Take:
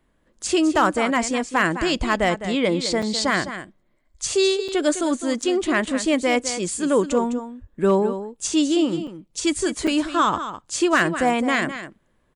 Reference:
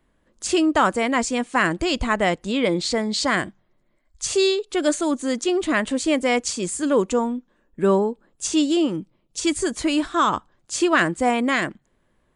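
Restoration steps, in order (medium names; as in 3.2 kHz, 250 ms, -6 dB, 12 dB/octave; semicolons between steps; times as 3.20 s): clip repair -8.5 dBFS; 7.60–7.72 s: high-pass 140 Hz 24 dB/octave; interpolate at 3.02/4.68/5.42/9.07/9.87 s, 5.7 ms; inverse comb 207 ms -11 dB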